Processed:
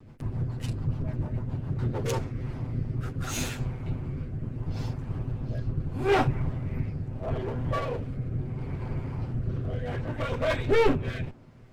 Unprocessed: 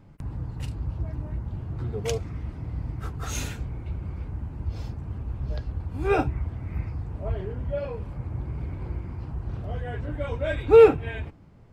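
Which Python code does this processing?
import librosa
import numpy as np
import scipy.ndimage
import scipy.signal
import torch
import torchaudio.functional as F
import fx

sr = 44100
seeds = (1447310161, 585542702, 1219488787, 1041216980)

y = fx.lower_of_two(x, sr, delay_ms=7.9)
y = 10.0 ** (-17.0 / 20.0) * np.tanh(y / 10.0 ** (-17.0 / 20.0))
y = fx.rotary_switch(y, sr, hz=7.0, then_hz=0.75, switch_at_s=1.74)
y = y * librosa.db_to_amplitude(5.0)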